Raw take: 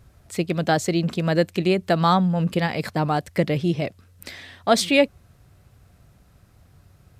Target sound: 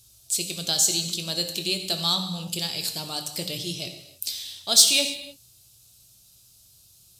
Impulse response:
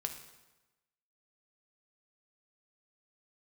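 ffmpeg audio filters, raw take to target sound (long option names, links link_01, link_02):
-filter_complex "[0:a]aexciter=amount=12.4:drive=8.5:freq=3000[link_01];[1:a]atrim=start_sample=2205,afade=type=out:start_time=0.31:duration=0.01,atrim=end_sample=14112,asetrate=35721,aresample=44100[link_02];[link_01][link_02]afir=irnorm=-1:irlink=0,volume=-15dB"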